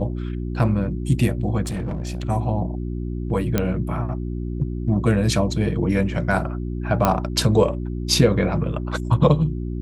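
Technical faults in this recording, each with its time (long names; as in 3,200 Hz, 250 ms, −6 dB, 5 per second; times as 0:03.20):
mains hum 60 Hz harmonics 6 −27 dBFS
0:01.63–0:02.25: clipping −23 dBFS
0:03.58: click −6 dBFS
0:07.05: click −4 dBFS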